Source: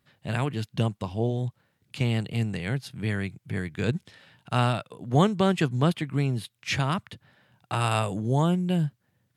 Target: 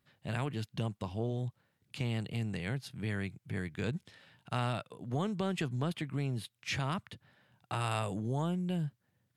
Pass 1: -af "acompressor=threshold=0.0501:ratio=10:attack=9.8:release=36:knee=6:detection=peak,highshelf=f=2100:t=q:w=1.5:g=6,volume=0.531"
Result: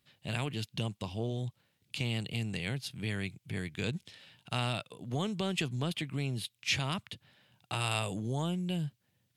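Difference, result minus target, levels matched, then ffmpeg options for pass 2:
4 kHz band +6.5 dB
-af "acompressor=threshold=0.0501:ratio=10:attack=9.8:release=36:knee=6:detection=peak,volume=0.531"

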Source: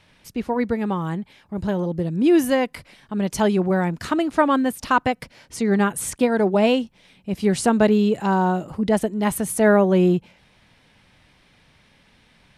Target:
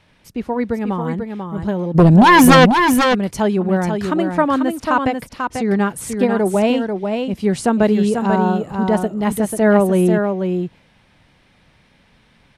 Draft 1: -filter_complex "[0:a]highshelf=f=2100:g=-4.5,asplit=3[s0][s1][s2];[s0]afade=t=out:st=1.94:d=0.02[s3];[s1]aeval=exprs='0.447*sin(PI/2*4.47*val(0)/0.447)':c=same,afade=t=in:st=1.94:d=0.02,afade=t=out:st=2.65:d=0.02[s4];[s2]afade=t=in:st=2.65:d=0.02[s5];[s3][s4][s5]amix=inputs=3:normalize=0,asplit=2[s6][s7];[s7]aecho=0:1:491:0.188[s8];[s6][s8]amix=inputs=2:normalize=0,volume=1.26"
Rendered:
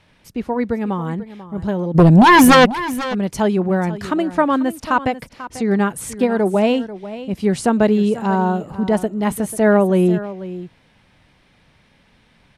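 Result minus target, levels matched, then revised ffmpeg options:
echo-to-direct -9 dB
-filter_complex "[0:a]highshelf=f=2100:g=-4.5,asplit=3[s0][s1][s2];[s0]afade=t=out:st=1.94:d=0.02[s3];[s1]aeval=exprs='0.447*sin(PI/2*4.47*val(0)/0.447)':c=same,afade=t=in:st=1.94:d=0.02,afade=t=out:st=2.65:d=0.02[s4];[s2]afade=t=in:st=2.65:d=0.02[s5];[s3][s4][s5]amix=inputs=3:normalize=0,asplit=2[s6][s7];[s7]aecho=0:1:491:0.531[s8];[s6][s8]amix=inputs=2:normalize=0,volume=1.26"

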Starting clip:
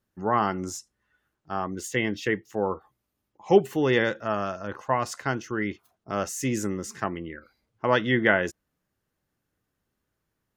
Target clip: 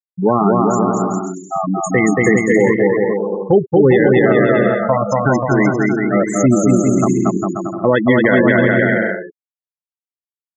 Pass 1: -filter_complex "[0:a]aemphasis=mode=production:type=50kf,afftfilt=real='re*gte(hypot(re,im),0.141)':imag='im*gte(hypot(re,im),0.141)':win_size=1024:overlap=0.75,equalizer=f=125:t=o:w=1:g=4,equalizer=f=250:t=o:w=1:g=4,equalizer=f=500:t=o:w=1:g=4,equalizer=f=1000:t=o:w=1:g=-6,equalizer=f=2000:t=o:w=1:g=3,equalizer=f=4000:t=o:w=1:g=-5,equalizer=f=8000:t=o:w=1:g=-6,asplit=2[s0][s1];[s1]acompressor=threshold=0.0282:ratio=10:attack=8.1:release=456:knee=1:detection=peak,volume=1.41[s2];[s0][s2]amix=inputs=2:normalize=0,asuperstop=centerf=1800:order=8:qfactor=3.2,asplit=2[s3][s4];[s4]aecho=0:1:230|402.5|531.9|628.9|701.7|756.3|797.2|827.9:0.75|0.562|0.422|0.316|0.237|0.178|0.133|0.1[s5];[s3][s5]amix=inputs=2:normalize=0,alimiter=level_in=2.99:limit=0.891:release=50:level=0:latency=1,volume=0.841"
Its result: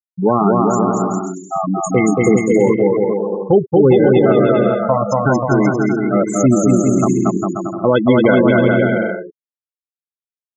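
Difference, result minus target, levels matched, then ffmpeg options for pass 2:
2 kHz band -5.5 dB
-filter_complex "[0:a]aemphasis=mode=production:type=50kf,afftfilt=real='re*gte(hypot(re,im),0.141)':imag='im*gte(hypot(re,im),0.141)':win_size=1024:overlap=0.75,equalizer=f=125:t=o:w=1:g=4,equalizer=f=250:t=o:w=1:g=4,equalizer=f=500:t=o:w=1:g=4,equalizer=f=1000:t=o:w=1:g=-6,equalizer=f=2000:t=o:w=1:g=3,equalizer=f=4000:t=o:w=1:g=-5,equalizer=f=8000:t=o:w=1:g=-6,asplit=2[s0][s1];[s1]acompressor=threshold=0.0282:ratio=10:attack=8.1:release=456:knee=1:detection=peak,volume=1.41[s2];[s0][s2]amix=inputs=2:normalize=0,asuperstop=centerf=4400:order=8:qfactor=3.2,asplit=2[s3][s4];[s4]aecho=0:1:230|402.5|531.9|628.9|701.7|756.3|797.2|827.9:0.75|0.562|0.422|0.316|0.237|0.178|0.133|0.1[s5];[s3][s5]amix=inputs=2:normalize=0,alimiter=level_in=2.99:limit=0.891:release=50:level=0:latency=1,volume=0.841"

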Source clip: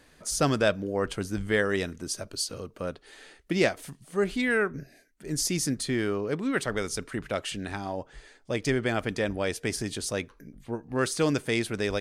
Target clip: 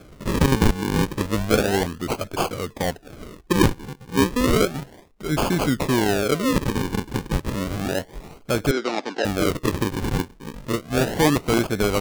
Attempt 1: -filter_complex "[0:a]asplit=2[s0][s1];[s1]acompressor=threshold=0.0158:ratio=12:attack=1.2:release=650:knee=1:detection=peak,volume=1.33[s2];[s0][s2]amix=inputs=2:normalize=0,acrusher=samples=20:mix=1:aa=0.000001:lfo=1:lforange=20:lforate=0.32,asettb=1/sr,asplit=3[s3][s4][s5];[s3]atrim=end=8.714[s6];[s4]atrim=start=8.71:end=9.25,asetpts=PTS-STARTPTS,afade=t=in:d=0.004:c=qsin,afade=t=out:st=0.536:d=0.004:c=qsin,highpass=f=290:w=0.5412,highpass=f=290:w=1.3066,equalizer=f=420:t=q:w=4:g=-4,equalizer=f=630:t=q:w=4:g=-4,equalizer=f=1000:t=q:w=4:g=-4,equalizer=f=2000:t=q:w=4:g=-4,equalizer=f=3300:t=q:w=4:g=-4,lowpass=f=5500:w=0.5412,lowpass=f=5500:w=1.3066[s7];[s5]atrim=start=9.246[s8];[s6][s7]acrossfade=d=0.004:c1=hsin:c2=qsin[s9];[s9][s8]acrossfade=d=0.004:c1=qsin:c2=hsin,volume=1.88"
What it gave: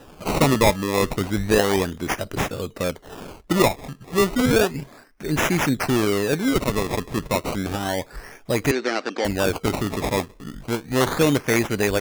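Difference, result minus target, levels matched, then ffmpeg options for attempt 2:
decimation with a swept rate: distortion -8 dB
-filter_complex "[0:a]asplit=2[s0][s1];[s1]acompressor=threshold=0.0158:ratio=12:attack=1.2:release=650:knee=1:detection=peak,volume=1.33[s2];[s0][s2]amix=inputs=2:normalize=0,acrusher=samples=46:mix=1:aa=0.000001:lfo=1:lforange=46:lforate=0.32,asettb=1/sr,asplit=3[s3][s4][s5];[s3]atrim=end=8.714[s6];[s4]atrim=start=8.71:end=9.25,asetpts=PTS-STARTPTS,afade=t=in:d=0.004:c=qsin,afade=t=out:st=0.536:d=0.004:c=qsin,highpass=f=290:w=0.5412,highpass=f=290:w=1.3066,equalizer=f=420:t=q:w=4:g=-4,equalizer=f=630:t=q:w=4:g=-4,equalizer=f=1000:t=q:w=4:g=-4,equalizer=f=2000:t=q:w=4:g=-4,equalizer=f=3300:t=q:w=4:g=-4,lowpass=f=5500:w=0.5412,lowpass=f=5500:w=1.3066[s7];[s5]atrim=start=9.246[s8];[s6][s7]acrossfade=d=0.004:c1=hsin:c2=qsin[s9];[s9][s8]acrossfade=d=0.004:c1=qsin:c2=hsin,volume=1.88"

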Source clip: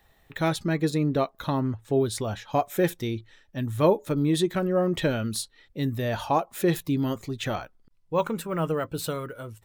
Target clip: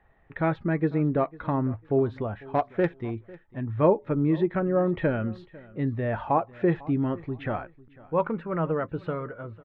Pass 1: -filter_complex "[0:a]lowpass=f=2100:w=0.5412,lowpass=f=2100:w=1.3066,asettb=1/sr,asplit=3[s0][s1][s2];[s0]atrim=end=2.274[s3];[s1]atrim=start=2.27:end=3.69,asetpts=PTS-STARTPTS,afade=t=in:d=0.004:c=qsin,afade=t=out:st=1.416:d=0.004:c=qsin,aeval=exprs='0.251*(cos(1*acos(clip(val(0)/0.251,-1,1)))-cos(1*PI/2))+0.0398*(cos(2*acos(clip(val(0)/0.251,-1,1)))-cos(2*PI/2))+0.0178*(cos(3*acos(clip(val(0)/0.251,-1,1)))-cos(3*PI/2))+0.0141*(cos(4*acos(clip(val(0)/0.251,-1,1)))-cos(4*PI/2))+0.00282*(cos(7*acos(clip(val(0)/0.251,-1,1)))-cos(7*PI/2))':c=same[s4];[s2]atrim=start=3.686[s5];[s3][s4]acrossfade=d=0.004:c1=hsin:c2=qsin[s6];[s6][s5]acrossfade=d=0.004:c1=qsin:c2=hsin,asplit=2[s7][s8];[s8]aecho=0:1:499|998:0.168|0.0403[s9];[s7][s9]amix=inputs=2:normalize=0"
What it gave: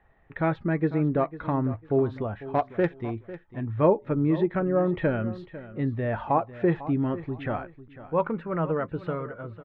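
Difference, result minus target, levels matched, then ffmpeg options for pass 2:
echo-to-direct +6 dB
-filter_complex "[0:a]lowpass=f=2100:w=0.5412,lowpass=f=2100:w=1.3066,asettb=1/sr,asplit=3[s0][s1][s2];[s0]atrim=end=2.274[s3];[s1]atrim=start=2.27:end=3.69,asetpts=PTS-STARTPTS,afade=t=in:d=0.004:c=qsin,afade=t=out:st=1.416:d=0.004:c=qsin,aeval=exprs='0.251*(cos(1*acos(clip(val(0)/0.251,-1,1)))-cos(1*PI/2))+0.0398*(cos(2*acos(clip(val(0)/0.251,-1,1)))-cos(2*PI/2))+0.0178*(cos(3*acos(clip(val(0)/0.251,-1,1)))-cos(3*PI/2))+0.0141*(cos(4*acos(clip(val(0)/0.251,-1,1)))-cos(4*PI/2))+0.00282*(cos(7*acos(clip(val(0)/0.251,-1,1)))-cos(7*PI/2))':c=same[s4];[s2]atrim=start=3.686[s5];[s3][s4]acrossfade=d=0.004:c1=hsin:c2=qsin[s6];[s6][s5]acrossfade=d=0.004:c1=qsin:c2=hsin,asplit=2[s7][s8];[s8]aecho=0:1:499|998:0.0841|0.0202[s9];[s7][s9]amix=inputs=2:normalize=0"

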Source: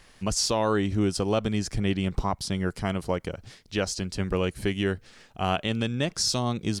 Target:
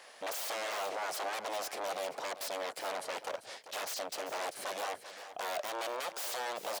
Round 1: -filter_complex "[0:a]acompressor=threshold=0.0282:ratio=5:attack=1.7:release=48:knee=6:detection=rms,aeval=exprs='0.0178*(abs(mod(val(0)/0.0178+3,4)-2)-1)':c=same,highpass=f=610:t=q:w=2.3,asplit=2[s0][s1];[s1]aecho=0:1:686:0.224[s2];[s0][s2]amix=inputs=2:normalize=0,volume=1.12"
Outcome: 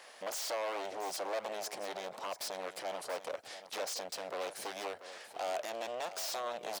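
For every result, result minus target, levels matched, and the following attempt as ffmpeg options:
echo 293 ms late; compression: peak gain reduction +7 dB
-filter_complex "[0:a]acompressor=threshold=0.0282:ratio=5:attack=1.7:release=48:knee=6:detection=rms,aeval=exprs='0.0178*(abs(mod(val(0)/0.0178+3,4)-2)-1)':c=same,highpass=f=610:t=q:w=2.3,asplit=2[s0][s1];[s1]aecho=0:1:393:0.224[s2];[s0][s2]amix=inputs=2:normalize=0,volume=1.12"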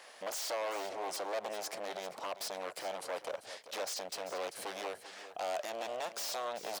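compression: peak gain reduction +7 dB
-filter_complex "[0:a]acompressor=threshold=0.0794:ratio=5:attack=1.7:release=48:knee=6:detection=rms,aeval=exprs='0.0178*(abs(mod(val(0)/0.0178+3,4)-2)-1)':c=same,highpass=f=610:t=q:w=2.3,asplit=2[s0][s1];[s1]aecho=0:1:393:0.224[s2];[s0][s2]amix=inputs=2:normalize=0,volume=1.12"

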